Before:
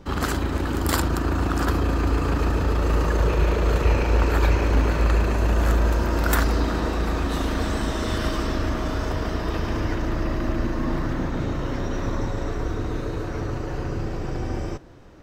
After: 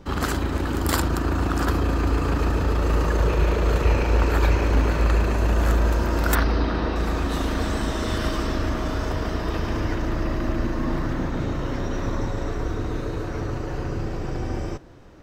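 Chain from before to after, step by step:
0:06.35–0:06.96: Savitzky-Golay smoothing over 15 samples

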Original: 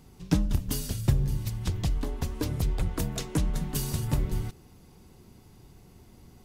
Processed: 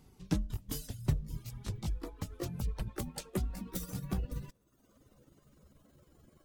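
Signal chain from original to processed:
pitch glide at a constant tempo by +7 semitones starting unshifted
reverb reduction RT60 0.92 s
level −6.5 dB

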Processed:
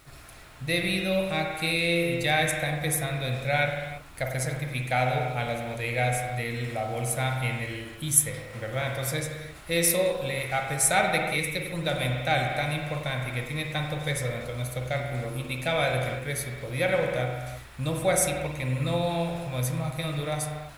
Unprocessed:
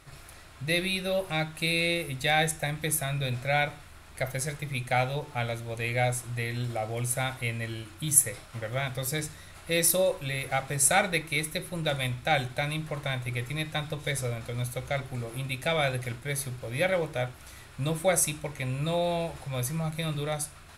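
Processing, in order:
bit reduction 10 bits
on a send: convolution reverb, pre-delay 47 ms, DRR 2 dB

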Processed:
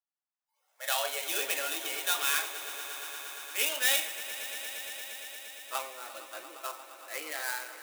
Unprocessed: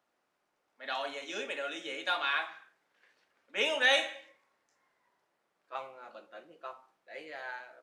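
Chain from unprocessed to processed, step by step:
gap after every zero crossing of 0.07 ms
high-pass filter 130 Hz
spectral tilt +4.5 dB per octave
automatic gain control gain up to 11 dB
noise reduction from a noise print of the clip's start 22 dB
high-pass filter sweep 790 Hz → 290 Hz, 0:00.41–0:01.64
echo that builds up and dies away 116 ms, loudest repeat 5, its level −16.5 dB
level −8 dB

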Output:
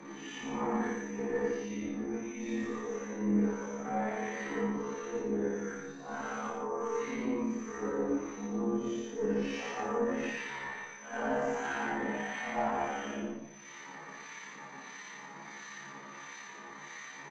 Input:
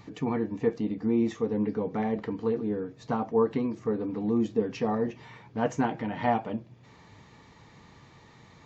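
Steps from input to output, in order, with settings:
random phases in long frames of 200 ms
Chebyshev high-pass filter 160 Hz, order 6
parametric band 1,700 Hz +12.5 dB 1.8 octaves
reversed playback
downward compressor 4 to 1, threshold −36 dBFS, peak gain reduction 16.5 dB
reversed playback
steady tone 6,100 Hz −57 dBFS
harmonic generator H 3 −25 dB, 4 −23 dB, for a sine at −24.5 dBFS
time stretch by overlap-add 2×, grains 58 ms
two-band tremolo in antiphase 1.5 Hz, depth 70%, crossover 1,300 Hz
multi-tap delay 49/107/161 ms −3.5/−5/−8.5 dB
on a send at −16 dB: convolution reverb RT60 1.8 s, pre-delay 3 ms
on the sum: level +5.5 dB

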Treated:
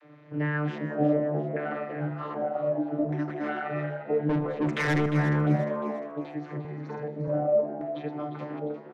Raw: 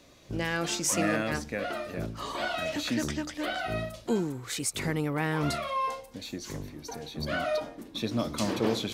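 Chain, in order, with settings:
fade-out on the ending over 1.06 s
high-shelf EQ 5,100 Hz +6 dB
mains-hum notches 50/100/150/200/250/300/350/400 Hz
in parallel at +0.5 dB: downward compressor, threshold −40 dBFS, peak gain reduction 18.5 dB
on the sum: channel vocoder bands 32, saw 149 Hz
0:02.93–0:03.49: sample-rate reduction 5,700 Hz, jitter 0%
auto-filter low-pass square 0.64 Hz 610–1,800 Hz
0:04.29–0:05.06: mid-hump overdrive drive 26 dB, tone 3,600 Hz, clips at −18.5 dBFS
0:06.60–0:07.28: double-tracking delay 49 ms −2.5 dB
echo with shifted repeats 352 ms, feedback 41%, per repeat +70 Hz, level −11 dB
four-comb reverb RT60 0.96 s, combs from 30 ms, DRR 15 dB

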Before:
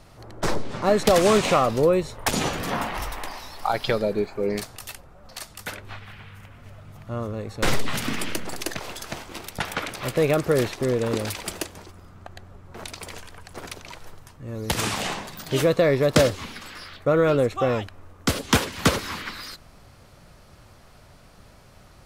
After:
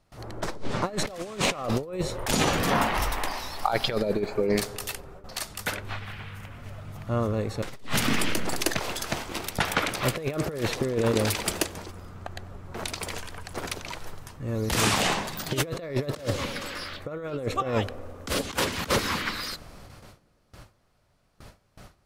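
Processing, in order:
noise gate with hold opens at −39 dBFS
tape delay 93 ms, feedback 85%, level −21.5 dB, low-pass 1,200 Hz
compressor whose output falls as the input rises −25 dBFS, ratio −0.5

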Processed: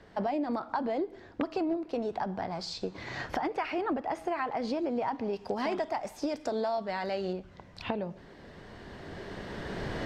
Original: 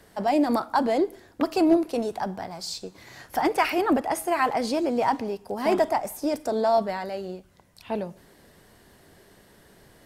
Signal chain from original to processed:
camcorder AGC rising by 10 dB per second
0:05.33–0:07.33: high-shelf EQ 2,300 Hz +10.5 dB
downward compressor 6 to 1, threshold −28 dBFS, peak gain reduction 13 dB
high-frequency loss of the air 170 metres

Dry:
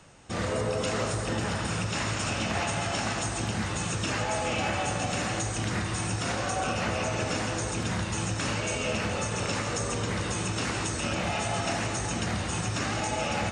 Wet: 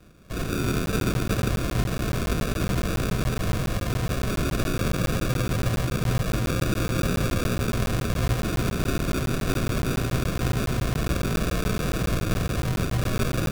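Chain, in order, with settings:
flanger 0.44 Hz, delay 3.1 ms, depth 4.8 ms, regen −63%
echo machine with several playback heads 123 ms, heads second and third, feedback 74%, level −7 dB
sample-rate reduction 1,100 Hz, jitter 0%
tape wow and flutter 20 cents
frequency shifter −230 Hz
regular buffer underruns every 0.14 s, samples 512, zero, from 0:00.86
level +7 dB

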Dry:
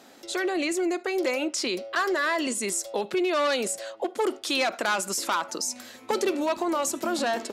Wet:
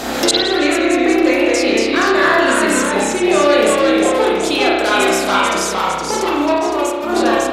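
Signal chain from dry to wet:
delay with pitch and tempo change per echo 142 ms, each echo −1 semitone, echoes 2
automatic gain control gain up to 11.5 dB
gate with flip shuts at −20 dBFS, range −30 dB
mains hum 60 Hz, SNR 25 dB
0:06.58–0:07.09: downward expander −41 dBFS
spring reverb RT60 1.2 s, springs 31 ms, chirp 25 ms, DRR −4 dB
boost into a limiter +27.5 dB
level −1 dB

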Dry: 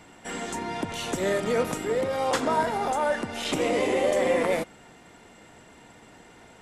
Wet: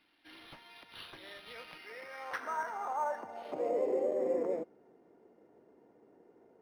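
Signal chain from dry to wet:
band-pass filter sweep 4,400 Hz → 400 Hz, 0:01.19–0:04.11
linearly interpolated sample-rate reduction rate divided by 6×
level −4 dB

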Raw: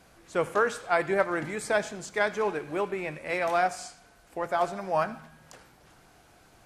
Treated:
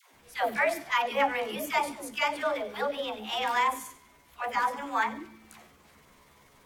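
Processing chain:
pitch shift by two crossfaded delay taps +6 semitones
all-pass dispersion lows, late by 138 ms, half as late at 520 Hz

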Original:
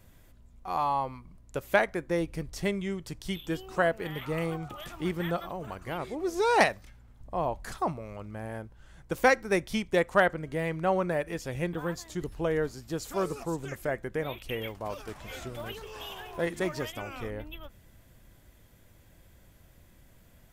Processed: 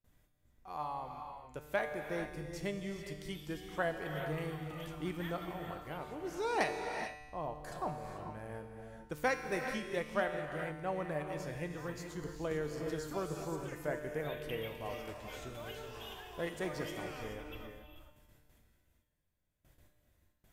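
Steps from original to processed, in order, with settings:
noise gate with hold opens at −46 dBFS
speech leveller within 3 dB 2 s
tuned comb filter 150 Hz, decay 1.3 s, mix 80%
reverb whose tail is shaped and stops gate 460 ms rising, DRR 5.5 dB
0:12.51–0:13.45: multiband upward and downward compressor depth 70%
level +2.5 dB

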